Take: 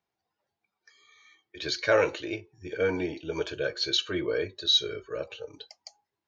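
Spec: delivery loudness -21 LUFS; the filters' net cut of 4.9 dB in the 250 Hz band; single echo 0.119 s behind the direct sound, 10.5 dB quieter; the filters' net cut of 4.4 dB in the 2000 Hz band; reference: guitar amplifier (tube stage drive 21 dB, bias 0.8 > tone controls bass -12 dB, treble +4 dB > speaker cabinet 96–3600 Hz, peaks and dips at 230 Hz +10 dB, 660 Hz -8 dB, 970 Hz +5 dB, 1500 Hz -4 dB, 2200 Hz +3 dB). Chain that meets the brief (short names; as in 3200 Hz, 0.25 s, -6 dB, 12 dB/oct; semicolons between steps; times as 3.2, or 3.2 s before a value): bell 250 Hz -4 dB; bell 2000 Hz -5 dB; echo 0.119 s -10.5 dB; tube stage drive 21 dB, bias 0.8; tone controls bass -12 dB, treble +4 dB; speaker cabinet 96–3600 Hz, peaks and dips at 230 Hz +10 dB, 660 Hz -8 dB, 970 Hz +5 dB, 1500 Hz -4 dB, 2200 Hz +3 dB; gain +15.5 dB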